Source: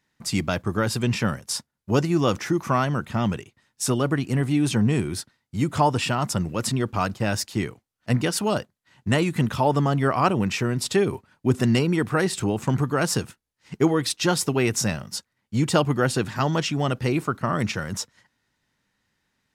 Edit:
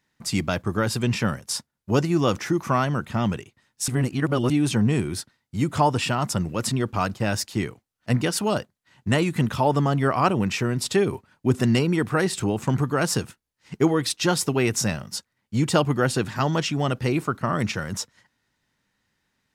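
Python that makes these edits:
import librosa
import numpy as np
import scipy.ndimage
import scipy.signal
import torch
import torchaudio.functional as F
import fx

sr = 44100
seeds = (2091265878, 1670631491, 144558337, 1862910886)

y = fx.edit(x, sr, fx.reverse_span(start_s=3.88, length_s=0.62), tone=tone)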